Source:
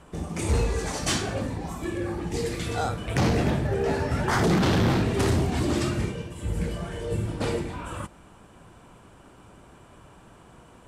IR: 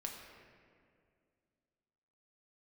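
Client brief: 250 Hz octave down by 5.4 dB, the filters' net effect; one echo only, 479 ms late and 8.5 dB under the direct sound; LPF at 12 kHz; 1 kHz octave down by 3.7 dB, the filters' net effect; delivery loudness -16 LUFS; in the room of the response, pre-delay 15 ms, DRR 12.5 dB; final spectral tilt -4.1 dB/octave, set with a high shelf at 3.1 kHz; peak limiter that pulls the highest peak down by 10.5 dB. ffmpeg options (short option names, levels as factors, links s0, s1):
-filter_complex "[0:a]lowpass=12000,equalizer=f=250:t=o:g=-8,equalizer=f=1000:t=o:g=-5.5,highshelf=f=3100:g=8,alimiter=limit=0.106:level=0:latency=1,aecho=1:1:479:0.376,asplit=2[s0][s1];[1:a]atrim=start_sample=2205,adelay=15[s2];[s1][s2]afir=irnorm=-1:irlink=0,volume=0.266[s3];[s0][s3]amix=inputs=2:normalize=0,volume=4.73"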